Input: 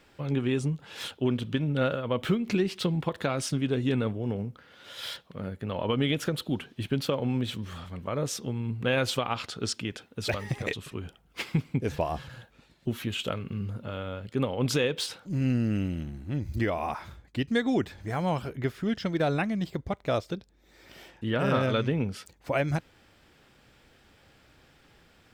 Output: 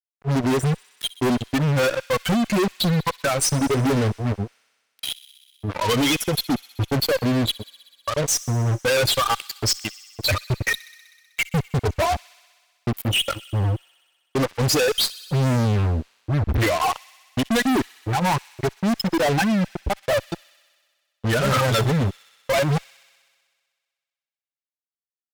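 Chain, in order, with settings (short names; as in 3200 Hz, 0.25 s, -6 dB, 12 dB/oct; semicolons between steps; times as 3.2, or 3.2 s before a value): per-bin expansion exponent 3; fuzz box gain 53 dB, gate -51 dBFS; vibrato 11 Hz 28 cents; on a send: thin delay 63 ms, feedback 79%, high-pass 2300 Hz, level -18.5 dB; on the sum: gain -4.5 dB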